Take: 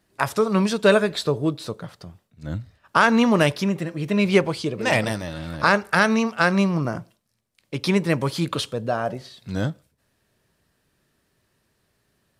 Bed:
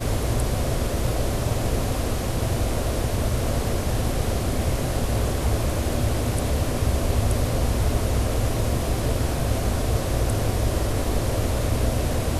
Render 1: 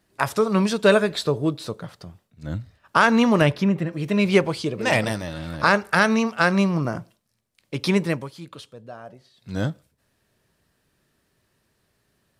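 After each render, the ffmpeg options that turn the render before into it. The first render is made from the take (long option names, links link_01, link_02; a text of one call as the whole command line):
ffmpeg -i in.wav -filter_complex "[0:a]asettb=1/sr,asplit=3[link_01][link_02][link_03];[link_01]atrim=end=3.414[link_04];[link_02]atrim=start=3.41:end=3.93,asetpts=PTS-STARTPTS,afade=type=in:duration=0.004:curve=qsin,afade=type=out:start_time=0.516:duration=0.004:curve=qsin,bass=frequency=250:gain=4,treble=frequency=4000:gain=-10[link_05];[link_03]atrim=start=3.926[link_06];[link_04][link_05]acrossfade=duration=0.004:curve1=hsin:curve2=qsin[link_07];[link_07][link_06]acrossfade=duration=0.004:curve1=qsin:curve2=hsin,asplit=3[link_08][link_09][link_10];[link_08]atrim=end=8.29,asetpts=PTS-STARTPTS,afade=type=out:start_time=8.02:duration=0.27:silence=0.177828[link_11];[link_09]atrim=start=8.29:end=9.34,asetpts=PTS-STARTPTS,volume=-15dB[link_12];[link_10]atrim=start=9.34,asetpts=PTS-STARTPTS,afade=type=in:duration=0.27:silence=0.177828[link_13];[link_11][link_12][link_13]concat=n=3:v=0:a=1" out.wav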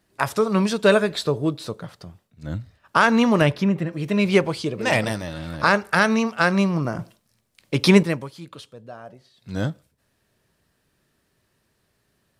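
ffmpeg -i in.wav -filter_complex "[0:a]asplit=3[link_01][link_02][link_03];[link_01]atrim=end=6.992[link_04];[link_02]atrim=start=6.988:end=8.032,asetpts=PTS-STARTPTS,volume=6.5dB[link_05];[link_03]atrim=start=8.028[link_06];[link_04][link_05]acrossfade=duration=0.004:curve1=hsin:curve2=hsin[link_07];[link_07][link_06]acrossfade=duration=0.004:curve1=hsin:curve2=hsin" out.wav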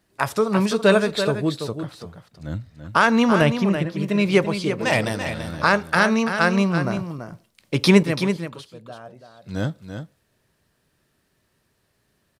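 ffmpeg -i in.wav -af "aecho=1:1:335:0.376" out.wav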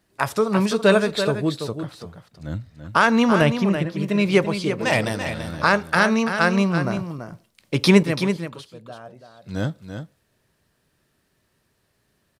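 ffmpeg -i in.wav -af anull out.wav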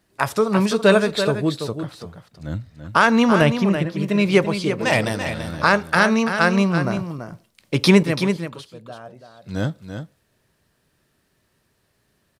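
ffmpeg -i in.wav -af "volume=1.5dB,alimiter=limit=-2dB:level=0:latency=1" out.wav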